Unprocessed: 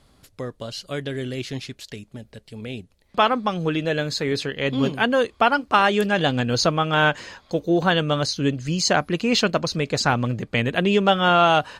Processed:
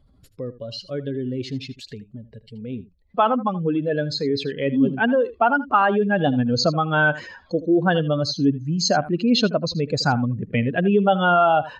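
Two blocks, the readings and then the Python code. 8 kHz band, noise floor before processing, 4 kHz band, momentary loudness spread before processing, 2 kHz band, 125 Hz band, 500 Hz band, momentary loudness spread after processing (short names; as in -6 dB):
-3.5 dB, -59 dBFS, -3.0 dB, 17 LU, -1.0 dB, +1.0 dB, +0.5 dB, 16 LU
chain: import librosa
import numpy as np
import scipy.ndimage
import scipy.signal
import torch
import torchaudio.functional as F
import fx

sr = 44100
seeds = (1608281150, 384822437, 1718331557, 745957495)

y = fx.spec_expand(x, sr, power=1.9)
y = fx.dynamic_eq(y, sr, hz=270.0, q=2.2, threshold_db=-36.0, ratio=4.0, max_db=4)
y = y + 10.0 ** (-16.5 / 20.0) * np.pad(y, (int(79 * sr / 1000.0), 0))[:len(y)]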